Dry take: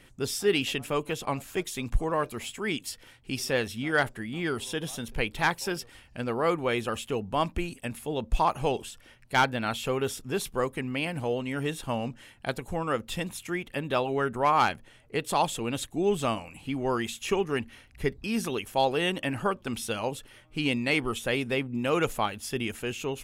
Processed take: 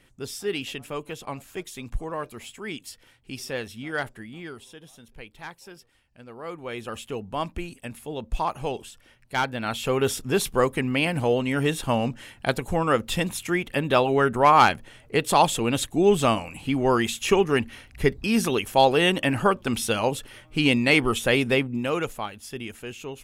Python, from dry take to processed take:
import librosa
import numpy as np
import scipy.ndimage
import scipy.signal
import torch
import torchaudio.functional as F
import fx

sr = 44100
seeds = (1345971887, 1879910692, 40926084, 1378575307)

y = fx.gain(x, sr, db=fx.line((4.22, -4.0), (4.78, -14.0), (6.26, -14.0), (6.99, -2.0), (9.43, -2.0), (10.1, 7.0), (21.54, 7.0), (22.15, -4.0)))